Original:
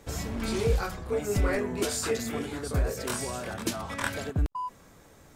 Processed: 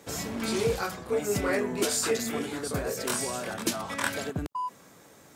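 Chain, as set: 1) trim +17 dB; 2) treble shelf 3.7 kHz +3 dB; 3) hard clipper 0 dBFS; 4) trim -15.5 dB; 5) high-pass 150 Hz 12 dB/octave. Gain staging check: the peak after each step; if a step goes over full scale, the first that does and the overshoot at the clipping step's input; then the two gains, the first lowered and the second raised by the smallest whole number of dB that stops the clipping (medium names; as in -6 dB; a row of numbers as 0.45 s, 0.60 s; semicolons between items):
+4.0 dBFS, +4.5 dBFS, 0.0 dBFS, -15.5 dBFS, -14.0 dBFS; step 1, 4.5 dB; step 1 +12 dB, step 4 -10.5 dB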